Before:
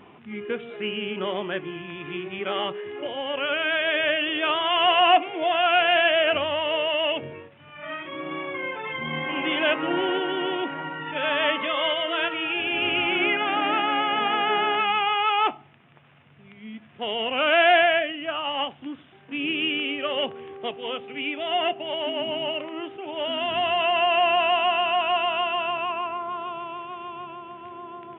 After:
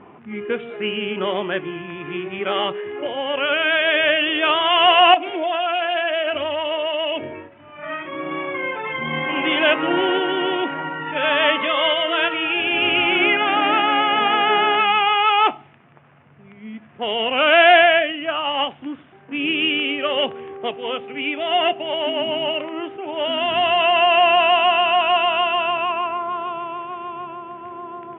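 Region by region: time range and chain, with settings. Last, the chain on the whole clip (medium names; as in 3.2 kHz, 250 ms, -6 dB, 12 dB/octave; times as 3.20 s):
5.14–7.79 s: comb 3.1 ms, depth 63% + compression 3:1, threshold -27 dBFS
whole clip: level-controlled noise filter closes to 1.6 kHz, open at -16.5 dBFS; bass shelf 190 Hz -3.5 dB; trim +6 dB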